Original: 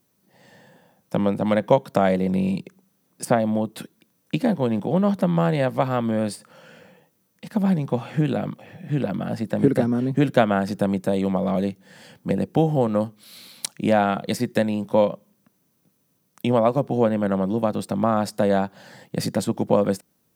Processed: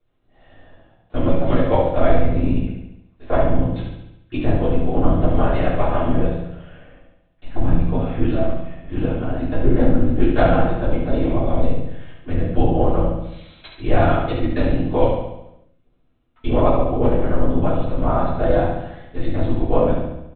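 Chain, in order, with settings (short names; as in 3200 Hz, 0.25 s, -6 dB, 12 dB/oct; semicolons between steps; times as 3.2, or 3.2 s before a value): HPF 170 Hz; LPC vocoder at 8 kHz whisper; on a send: feedback echo 70 ms, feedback 57%, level -5 dB; on the sum: shoebox room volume 190 m³, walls furnished, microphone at 3.3 m; gain -6.5 dB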